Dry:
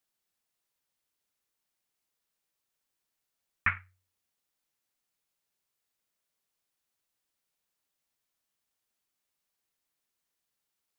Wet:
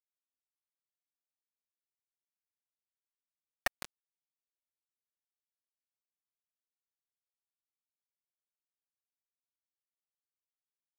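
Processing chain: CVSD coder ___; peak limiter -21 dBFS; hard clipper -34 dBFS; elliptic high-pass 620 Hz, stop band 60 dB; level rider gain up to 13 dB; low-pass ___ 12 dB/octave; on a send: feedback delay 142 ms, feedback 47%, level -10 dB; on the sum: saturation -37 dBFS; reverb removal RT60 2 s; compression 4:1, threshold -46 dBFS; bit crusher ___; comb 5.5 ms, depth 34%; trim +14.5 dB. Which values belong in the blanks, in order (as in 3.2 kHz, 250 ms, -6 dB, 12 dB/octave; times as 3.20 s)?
32 kbps, 1.4 kHz, 7-bit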